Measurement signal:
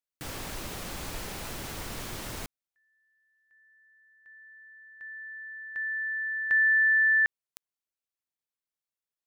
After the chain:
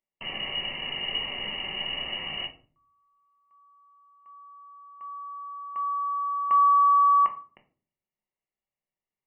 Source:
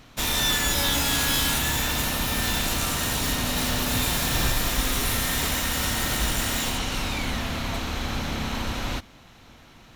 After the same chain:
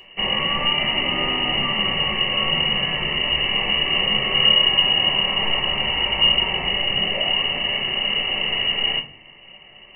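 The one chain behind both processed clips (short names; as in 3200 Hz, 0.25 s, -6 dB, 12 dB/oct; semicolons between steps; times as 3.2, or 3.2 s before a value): fixed phaser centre 1400 Hz, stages 6; inverted band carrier 2900 Hz; shoebox room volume 300 m³, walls furnished, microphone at 1.1 m; gain +4.5 dB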